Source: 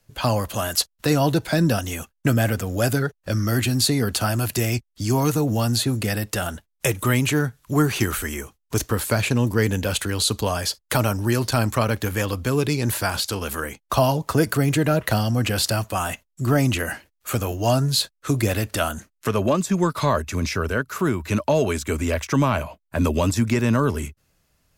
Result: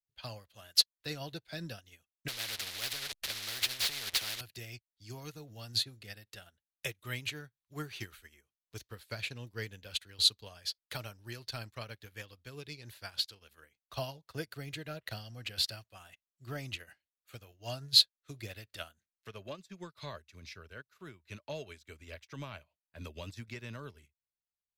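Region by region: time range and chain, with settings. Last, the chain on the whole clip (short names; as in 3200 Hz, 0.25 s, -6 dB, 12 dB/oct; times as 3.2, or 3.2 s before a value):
2.28–4.41 delta modulation 64 kbps, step -25 dBFS + sample leveller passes 2 + spectral compressor 4:1
whole clip: ten-band EQ 250 Hz -7 dB, 1000 Hz -5 dB, 2000 Hz +4 dB, 4000 Hz +10 dB, 8000 Hz -5 dB; upward expander 2.5:1, over -34 dBFS; gain -6.5 dB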